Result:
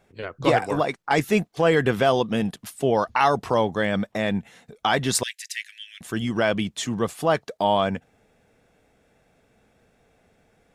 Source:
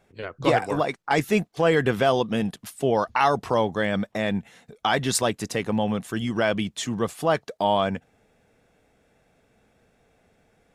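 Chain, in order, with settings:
0:05.23–0:06.01: Butterworth high-pass 1,700 Hz 72 dB per octave
level +1 dB

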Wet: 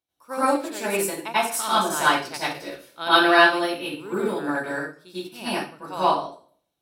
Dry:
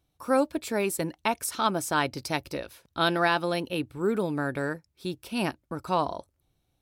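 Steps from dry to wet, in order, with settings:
high-pass filter 600 Hz 6 dB per octave
convolution reverb RT60 0.55 s, pre-delay 85 ms, DRR −10 dB
expander for the loud parts 1.5 to 1, over −34 dBFS

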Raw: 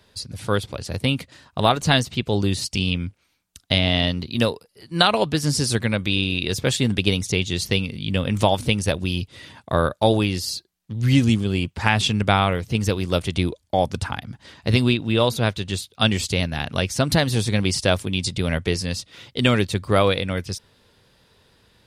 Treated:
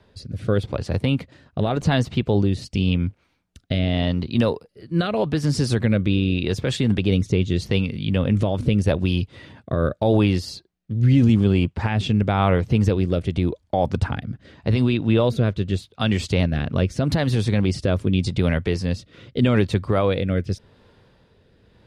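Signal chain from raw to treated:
low-pass filter 1,300 Hz 6 dB per octave
brickwall limiter −14.5 dBFS, peak gain reduction 8.5 dB
rotating-speaker cabinet horn 0.85 Hz
level +6.5 dB

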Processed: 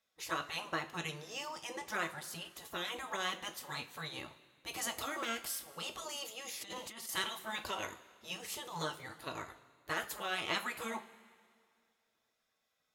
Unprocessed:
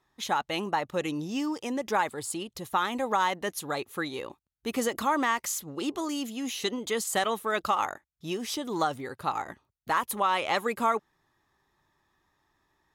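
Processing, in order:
gate on every frequency bin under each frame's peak −10 dB weak
coupled-rooms reverb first 0.24 s, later 2.1 s, from −19 dB, DRR 4.5 dB
0:06.61–0:07.09: compressor whose output falls as the input rises −43 dBFS, ratio −1
level −4 dB

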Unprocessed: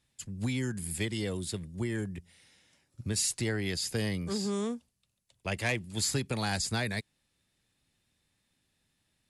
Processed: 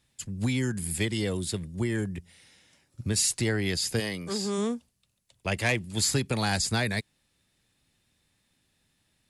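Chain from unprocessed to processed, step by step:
0:03.99–0:04.57: high-pass filter 470 Hz → 220 Hz 6 dB per octave
level +4.5 dB

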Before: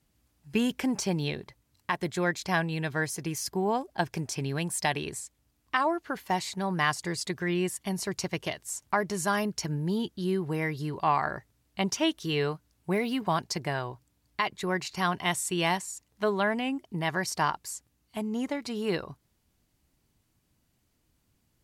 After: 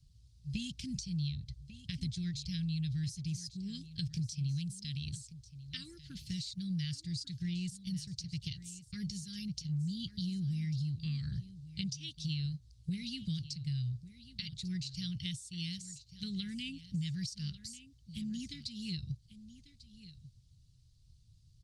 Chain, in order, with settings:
Chebyshev band-stop filter 130–4,200 Hz, order 3
0:00.90–0:03.23: parametric band 62 Hz +9.5 dB 0.82 octaves
downward compressor 6 to 1, threshold −46 dBFS, peak gain reduction 16.5 dB
high-frequency loss of the air 120 metres
single-tap delay 1,145 ms −15 dB
level +13 dB
Opus 32 kbit/s 48,000 Hz

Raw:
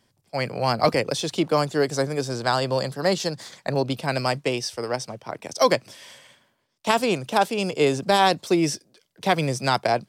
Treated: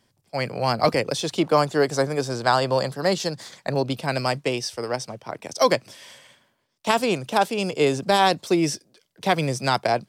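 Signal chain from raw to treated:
0:01.21–0:02.99: dynamic equaliser 950 Hz, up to +4 dB, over −33 dBFS, Q 0.71

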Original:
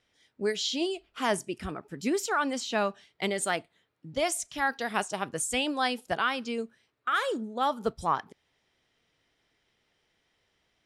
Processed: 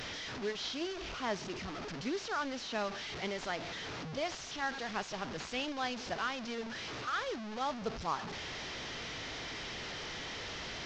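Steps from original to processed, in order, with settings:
linear delta modulator 32 kbit/s, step −27.5 dBFS
level −8.5 dB

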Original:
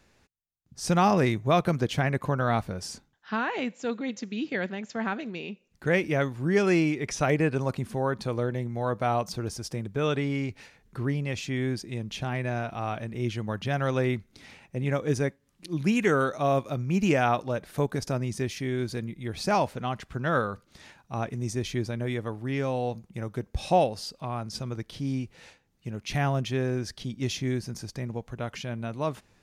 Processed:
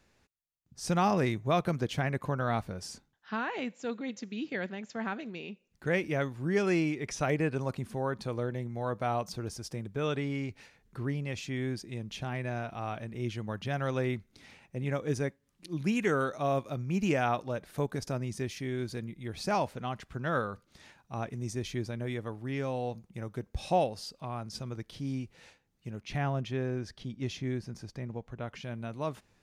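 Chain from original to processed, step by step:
0:26.01–0:28.63: low-pass filter 3,300 Hz 6 dB per octave
level −5 dB

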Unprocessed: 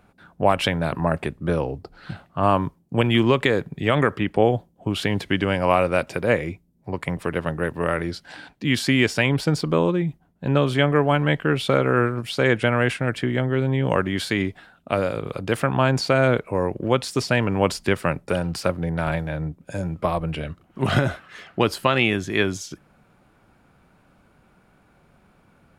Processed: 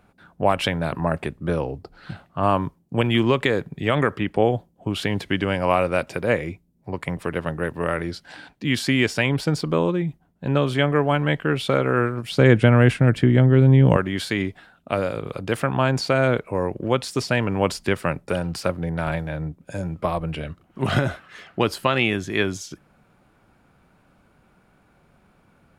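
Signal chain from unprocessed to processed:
0:12.31–0:13.97: low-shelf EQ 340 Hz +12 dB
level −1 dB

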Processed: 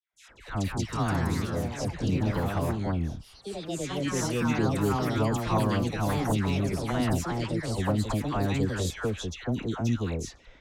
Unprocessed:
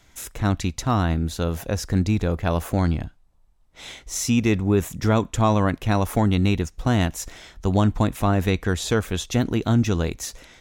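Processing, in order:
noise gate with hold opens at −43 dBFS
delay with pitch and tempo change per echo 262 ms, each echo +3 semitones, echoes 3
all-pass dispersion lows, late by 136 ms, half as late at 1,300 Hz
low-pass that shuts in the quiet parts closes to 2,900 Hz, open at −15 dBFS
level −8 dB

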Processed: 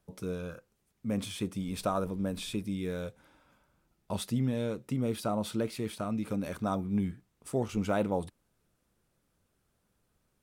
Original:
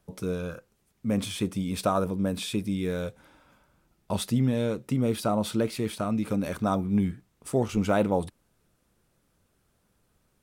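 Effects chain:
0:01.59–0:02.61: background noise brown −49 dBFS
level −5.5 dB

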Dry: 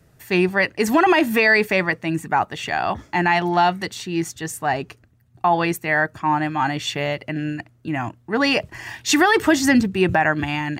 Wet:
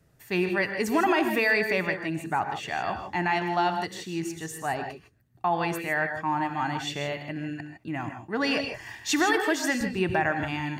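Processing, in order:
0:09.32–0:09.81: high-pass filter 360 Hz 12 dB per octave
reverb whose tail is shaped and stops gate 180 ms rising, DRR 6.5 dB
level −8 dB

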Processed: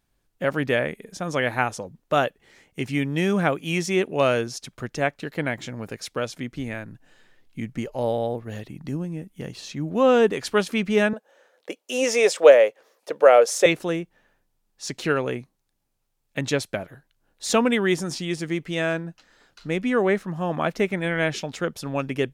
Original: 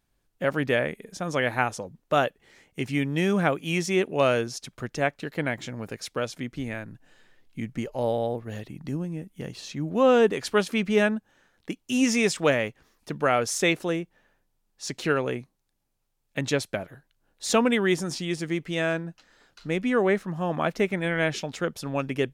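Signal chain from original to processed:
0:11.13–0:13.66: high-pass with resonance 520 Hz, resonance Q 4.9
level +1.5 dB

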